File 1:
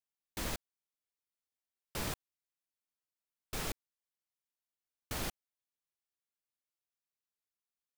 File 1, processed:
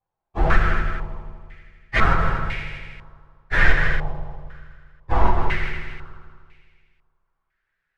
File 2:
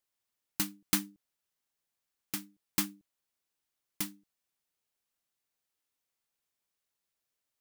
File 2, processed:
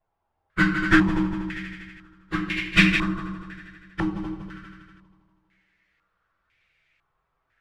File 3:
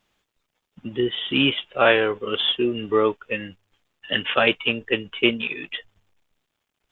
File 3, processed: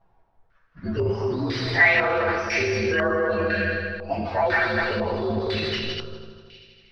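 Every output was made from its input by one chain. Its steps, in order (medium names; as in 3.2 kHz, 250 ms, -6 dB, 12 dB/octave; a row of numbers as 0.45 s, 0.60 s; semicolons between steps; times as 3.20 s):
frequency axis rescaled in octaves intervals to 120%; on a send: multi-head delay 80 ms, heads second and third, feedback 48%, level -8 dB; on the sum: flange 1.8 Hz, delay 1.6 ms, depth 1.8 ms, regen -50%; in parallel at -1 dB: compressor with a negative ratio -33 dBFS, ratio -1; on the sum: simulated room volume 250 m³, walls mixed, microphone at 0.7 m; peak limiter -19 dBFS; ten-band graphic EQ 250 Hz -10 dB, 500 Hz -6 dB, 1 kHz -7 dB; hard clipper -28 dBFS; step-sequenced low-pass 2 Hz 840–2300 Hz; normalise loudness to -23 LUFS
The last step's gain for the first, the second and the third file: +25.0 dB, +24.0 dB, +11.0 dB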